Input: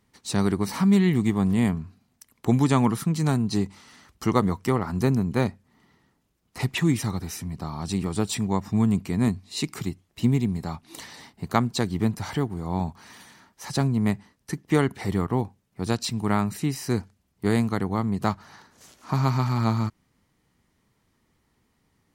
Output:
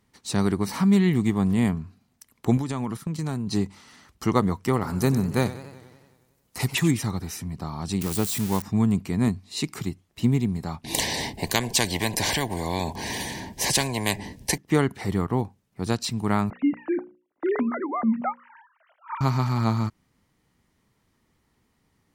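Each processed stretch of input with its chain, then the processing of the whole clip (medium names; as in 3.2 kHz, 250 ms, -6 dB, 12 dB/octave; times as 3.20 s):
2.57–3.47 s: gate -29 dBFS, range -10 dB + compression 12:1, threshold -24 dBFS
4.73–6.91 s: treble shelf 5.7 kHz +11.5 dB + modulated delay 92 ms, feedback 65%, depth 131 cents, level -15 dB
8.01–8.62 s: zero-crossing glitches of -18 dBFS + de-esser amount 35% + band-stop 700 Hz, Q 21
10.84–14.58 s: Butterworth band-stop 1.3 kHz, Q 1.9 + bass shelf 460 Hz +11 dB + spectrum-flattening compressor 4:1
16.50–19.21 s: formants replaced by sine waves + low-pass 2.2 kHz + hum notches 60/120/180/240/300/360/420/480/540 Hz
whole clip: none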